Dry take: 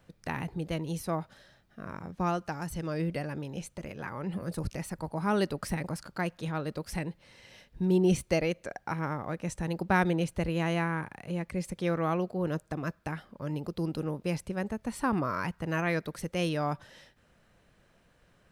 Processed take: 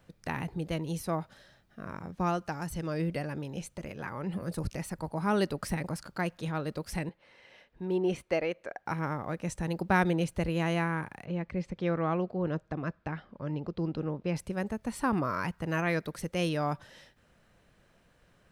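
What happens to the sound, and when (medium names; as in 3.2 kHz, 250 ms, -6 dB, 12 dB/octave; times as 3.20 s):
7.09–8.86 s: tone controls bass -13 dB, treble -14 dB
11.25–14.36 s: distance through air 180 m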